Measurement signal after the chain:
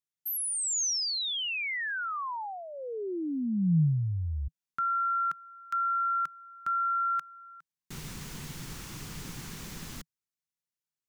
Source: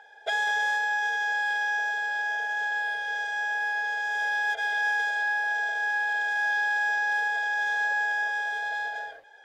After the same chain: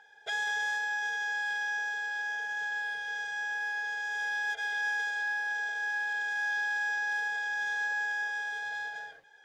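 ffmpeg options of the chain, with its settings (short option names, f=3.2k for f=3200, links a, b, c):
-af "equalizer=f=160:t=o:w=0.67:g=11,equalizer=f=630:t=o:w=0.67:g=-10,equalizer=f=6.3k:t=o:w=0.67:g=4,volume=-4.5dB"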